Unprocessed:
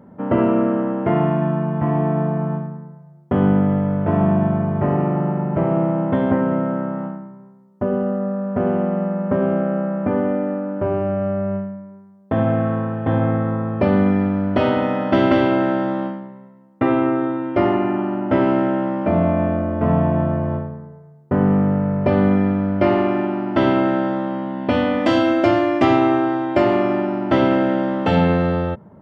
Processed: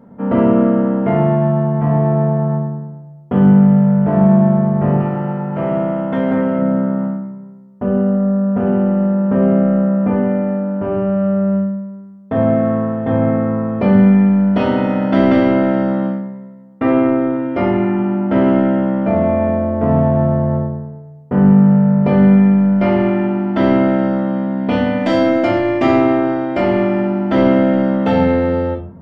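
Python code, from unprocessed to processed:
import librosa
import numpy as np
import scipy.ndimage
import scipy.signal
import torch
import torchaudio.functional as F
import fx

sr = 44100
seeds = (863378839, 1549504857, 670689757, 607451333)

p1 = fx.tilt_eq(x, sr, slope=2.5, at=(5.0, 6.59))
p2 = 10.0 ** (-16.5 / 20.0) * np.tanh(p1 / 10.0 ** (-16.5 / 20.0))
p3 = p1 + (p2 * librosa.db_to_amplitude(-9.0))
p4 = fx.room_shoebox(p3, sr, seeds[0], volume_m3=390.0, walls='furnished', distance_m=1.7)
y = p4 * librosa.db_to_amplitude(-3.5)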